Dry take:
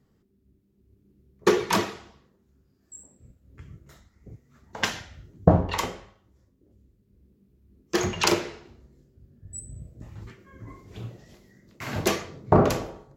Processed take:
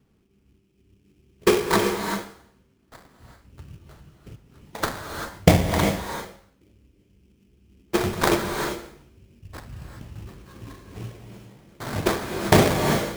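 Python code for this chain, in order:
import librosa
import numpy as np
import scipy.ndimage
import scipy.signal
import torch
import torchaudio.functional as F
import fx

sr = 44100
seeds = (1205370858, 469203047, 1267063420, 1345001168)

y = fx.high_shelf(x, sr, hz=8000.0, db=-8.5)
y = fx.sample_hold(y, sr, seeds[0], rate_hz=2800.0, jitter_pct=20)
y = fx.rev_gated(y, sr, seeds[1], gate_ms=420, shape='rising', drr_db=4.0)
y = y * 10.0 ** (2.0 / 20.0)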